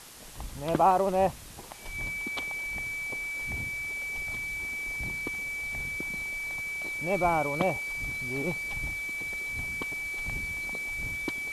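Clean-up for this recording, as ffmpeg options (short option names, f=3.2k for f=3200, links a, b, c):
-af "bandreject=f=2.3k:w=30,afwtdn=0.0045"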